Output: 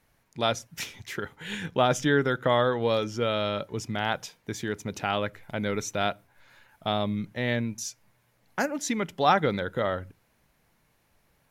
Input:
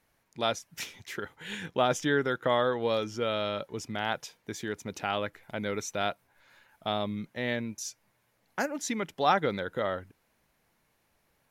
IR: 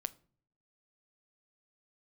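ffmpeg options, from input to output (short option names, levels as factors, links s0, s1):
-filter_complex "[0:a]asplit=2[s0][s1];[s1]bass=f=250:g=11,treble=f=4000:g=-1[s2];[1:a]atrim=start_sample=2205,atrim=end_sample=6615[s3];[s2][s3]afir=irnorm=-1:irlink=0,volume=0.473[s4];[s0][s4]amix=inputs=2:normalize=0"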